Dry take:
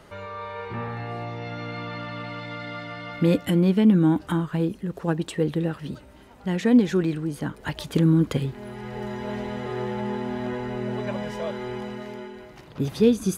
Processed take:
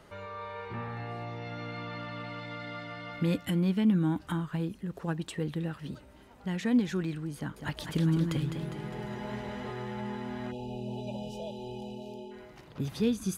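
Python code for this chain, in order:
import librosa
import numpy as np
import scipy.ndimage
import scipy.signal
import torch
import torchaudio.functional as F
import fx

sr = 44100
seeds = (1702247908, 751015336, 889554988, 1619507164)

y = fx.spec_erase(x, sr, start_s=10.51, length_s=1.8, low_hz=950.0, high_hz=2400.0)
y = fx.dynamic_eq(y, sr, hz=440.0, q=0.96, threshold_db=-35.0, ratio=4.0, max_db=-7)
y = fx.echo_warbled(y, sr, ms=203, feedback_pct=58, rate_hz=2.8, cents=91, wet_db=-7, at=(7.36, 9.71))
y = y * 10.0 ** (-5.5 / 20.0)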